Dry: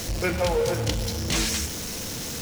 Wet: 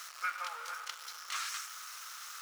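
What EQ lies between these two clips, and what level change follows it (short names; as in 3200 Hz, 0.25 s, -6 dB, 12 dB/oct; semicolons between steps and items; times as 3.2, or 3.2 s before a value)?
ladder high-pass 1200 Hz, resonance 80%; -1.5 dB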